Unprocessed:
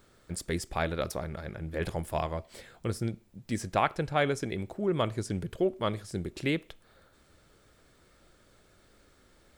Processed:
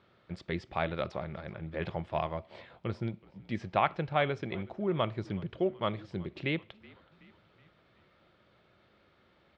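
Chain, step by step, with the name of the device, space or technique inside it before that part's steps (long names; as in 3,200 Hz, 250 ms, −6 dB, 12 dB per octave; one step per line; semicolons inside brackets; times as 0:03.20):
frequency-shifting delay pedal into a guitar cabinet (echo with shifted repeats 374 ms, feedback 55%, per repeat −52 Hz, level −23 dB; loudspeaker in its box 110–3,600 Hz, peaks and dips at 270 Hz −7 dB, 450 Hz −5 dB, 1,600 Hz −4 dB)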